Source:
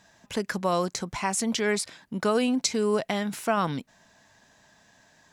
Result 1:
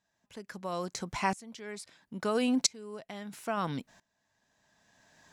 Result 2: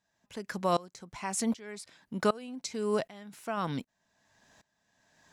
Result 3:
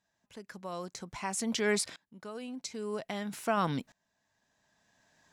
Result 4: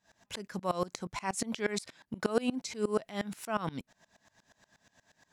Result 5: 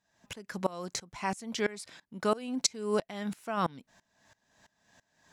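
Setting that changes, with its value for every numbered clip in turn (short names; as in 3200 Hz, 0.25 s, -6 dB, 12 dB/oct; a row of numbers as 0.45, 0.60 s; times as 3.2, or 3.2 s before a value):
dB-ramp tremolo, rate: 0.75, 1.3, 0.51, 8.4, 3 Hz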